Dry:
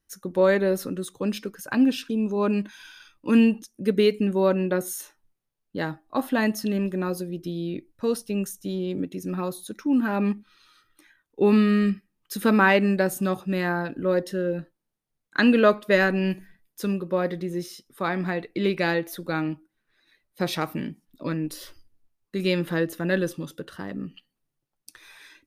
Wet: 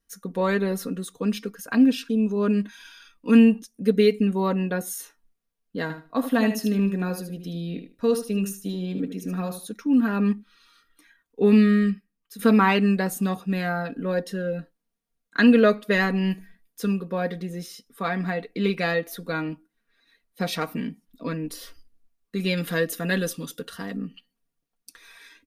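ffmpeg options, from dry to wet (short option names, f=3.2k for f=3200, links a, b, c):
-filter_complex "[0:a]asettb=1/sr,asplit=3[a][b][c];[a]atrim=end=5.824[d];[b]atrim=start=5.82:end=9.68,asetpts=PTS-STARTPTS,afade=t=in:d=0.004:c=qsin,afade=t=out:st=3.856:d=0.004:c=qsin,aecho=1:1:76|152|228:0.355|0.0674|0.0128,atrim=end_sample=170226[e];[c]atrim=start=9.676[f];[d][e]acrossfade=d=0.004:c1=hsin:c2=qsin[g];[g][f]acrossfade=d=0.004:c1=qsin:c2=hsin,asettb=1/sr,asplit=3[h][i][j];[h]atrim=end=22.574[k];[i]atrim=start=22.57:end=23.97,asetpts=PTS-STARTPTS,afade=t=in:d=0.004:c=qsin,afade=t=out:st=1.396:d=0.004:c=qsin,highshelf=f=3k:g=9.5[l];[j]atrim=start=23.966[m];[k][l]acrossfade=d=0.004:c1=hsin:c2=qsin[n];[n][m]acrossfade=d=0.004:c1=qsin:c2=hsin,asplit=2[o][p];[o]atrim=end=12.39,asetpts=PTS-STARTPTS,afade=t=out:st=11.65:d=0.74:silence=0.223872[q];[p]atrim=start=12.39,asetpts=PTS-STARTPTS,afade=t=in:d=0.004:c=hsin:silence=0.223872[r];[q][r]concat=n=2:v=0:a=1,bandreject=f=890:w=18,aecho=1:1:4.3:0.69,volume=-1.5dB"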